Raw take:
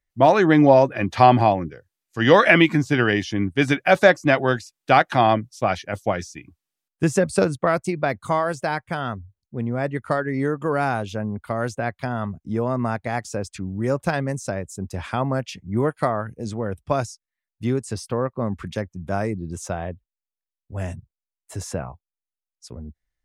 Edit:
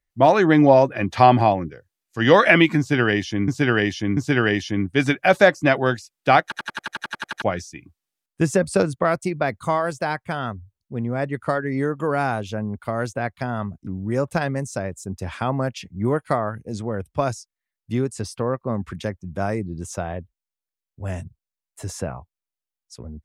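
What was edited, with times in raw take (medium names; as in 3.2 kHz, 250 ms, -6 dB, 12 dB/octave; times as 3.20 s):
2.79–3.48 s: loop, 3 plays
5.05 s: stutter in place 0.09 s, 11 plays
12.49–13.59 s: delete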